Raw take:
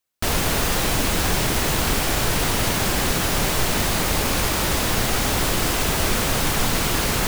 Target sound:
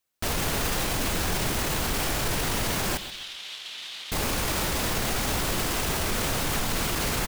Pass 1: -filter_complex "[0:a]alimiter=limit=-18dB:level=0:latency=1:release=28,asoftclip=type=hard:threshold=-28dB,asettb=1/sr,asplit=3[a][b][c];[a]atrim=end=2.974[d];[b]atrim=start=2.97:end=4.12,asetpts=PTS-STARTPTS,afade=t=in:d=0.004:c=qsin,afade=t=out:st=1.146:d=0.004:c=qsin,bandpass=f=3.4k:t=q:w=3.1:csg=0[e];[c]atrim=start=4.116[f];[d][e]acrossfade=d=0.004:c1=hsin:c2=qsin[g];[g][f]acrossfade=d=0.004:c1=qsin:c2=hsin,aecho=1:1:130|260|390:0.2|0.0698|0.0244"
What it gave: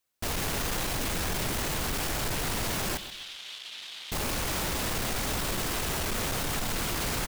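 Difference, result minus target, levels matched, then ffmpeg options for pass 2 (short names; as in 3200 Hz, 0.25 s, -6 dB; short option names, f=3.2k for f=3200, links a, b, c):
hard clip: distortion +31 dB
-filter_complex "[0:a]alimiter=limit=-18dB:level=0:latency=1:release=28,asoftclip=type=hard:threshold=-18.5dB,asettb=1/sr,asplit=3[a][b][c];[a]atrim=end=2.974[d];[b]atrim=start=2.97:end=4.12,asetpts=PTS-STARTPTS,afade=t=in:d=0.004:c=qsin,afade=t=out:st=1.146:d=0.004:c=qsin,bandpass=f=3.4k:t=q:w=3.1:csg=0[e];[c]atrim=start=4.116[f];[d][e]acrossfade=d=0.004:c1=hsin:c2=qsin[g];[g][f]acrossfade=d=0.004:c1=qsin:c2=hsin,aecho=1:1:130|260|390:0.2|0.0698|0.0244"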